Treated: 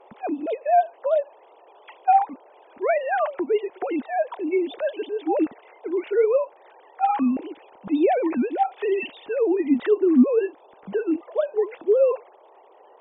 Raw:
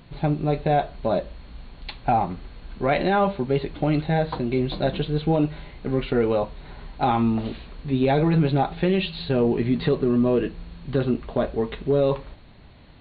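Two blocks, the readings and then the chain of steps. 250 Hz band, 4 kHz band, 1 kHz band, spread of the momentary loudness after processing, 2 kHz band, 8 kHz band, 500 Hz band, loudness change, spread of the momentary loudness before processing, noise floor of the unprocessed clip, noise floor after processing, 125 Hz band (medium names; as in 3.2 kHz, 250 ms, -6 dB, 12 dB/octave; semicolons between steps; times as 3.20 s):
-1.0 dB, -10.5 dB, +2.0 dB, 10 LU, -1.5 dB, no reading, +2.0 dB, 0.0 dB, 11 LU, -47 dBFS, -53 dBFS, under -25 dB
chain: formants replaced by sine waves; band noise 380–970 Hz -52 dBFS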